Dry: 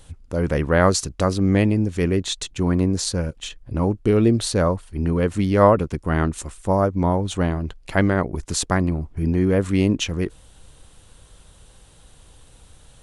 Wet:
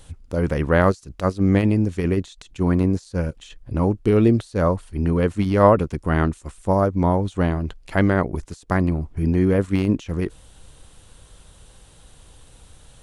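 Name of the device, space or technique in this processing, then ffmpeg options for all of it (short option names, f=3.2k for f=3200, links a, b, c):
de-esser from a sidechain: -filter_complex "[0:a]asplit=2[a][b];[b]highpass=f=5.8k:w=0.5412,highpass=f=5.8k:w=1.3066,apad=whole_len=574276[c];[a][c]sidechaincompress=threshold=-49dB:ratio=12:attack=3.4:release=40,volume=1dB"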